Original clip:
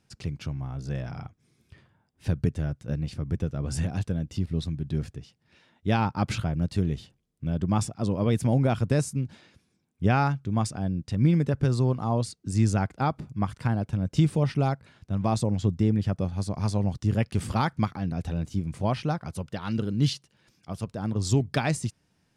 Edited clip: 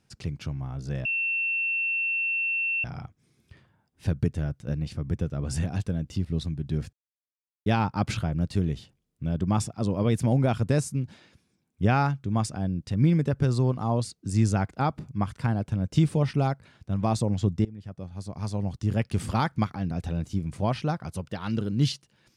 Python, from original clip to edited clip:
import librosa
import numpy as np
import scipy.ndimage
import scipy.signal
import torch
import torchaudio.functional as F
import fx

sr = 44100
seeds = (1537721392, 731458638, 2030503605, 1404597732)

y = fx.edit(x, sr, fx.insert_tone(at_s=1.05, length_s=1.79, hz=2700.0, db=-24.0),
    fx.silence(start_s=5.14, length_s=0.73),
    fx.fade_in_from(start_s=15.86, length_s=1.49, floor_db=-22.5), tone=tone)